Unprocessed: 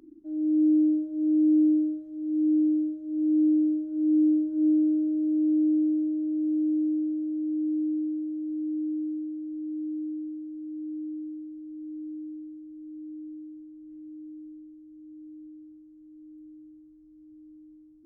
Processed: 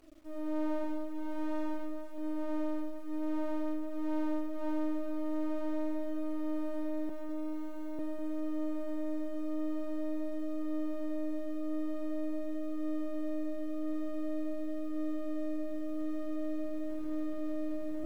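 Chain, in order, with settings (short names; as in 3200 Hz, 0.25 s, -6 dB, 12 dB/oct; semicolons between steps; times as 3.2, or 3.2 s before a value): self-modulated delay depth 0.49 ms; recorder AGC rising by 9.3 dB/s; 0.82–2.18 notches 50/100/150/200/250/300/350/400/450 Hz; 7.09–7.99 HPF 340 Hz 12 dB/oct; in parallel at -2 dB: limiter -27 dBFS, peak gain reduction 11.5 dB; on the sum: half-wave rectifier; bit-crush 9-bit; flange 0.47 Hz, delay 2.4 ms, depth 7.7 ms, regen -46%; on a send: split-band echo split 460 Hz, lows 0.197 s, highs 0.439 s, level -12 dB; on the sum: gain -6 dB; AC-3 320 kbps 48000 Hz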